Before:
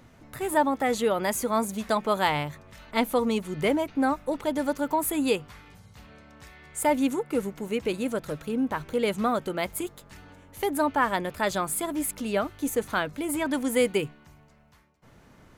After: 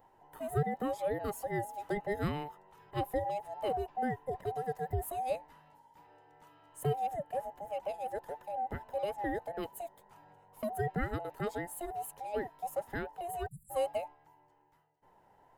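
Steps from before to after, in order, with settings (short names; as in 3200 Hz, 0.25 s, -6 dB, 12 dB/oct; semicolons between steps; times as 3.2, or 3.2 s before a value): band inversion scrambler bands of 1000 Hz; bell 4800 Hz -13.5 dB 2.9 oct; spectral delete 13.47–13.7, 200–7100 Hz; gain -7.5 dB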